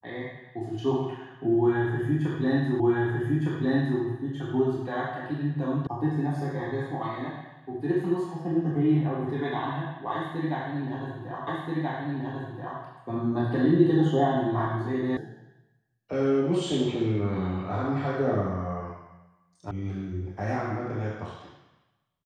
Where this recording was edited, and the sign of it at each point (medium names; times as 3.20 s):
2.80 s: repeat of the last 1.21 s
5.87 s: sound stops dead
11.47 s: repeat of the last 1.33 s
15.17 s: sound stops dead
19.71 s: sound stops dead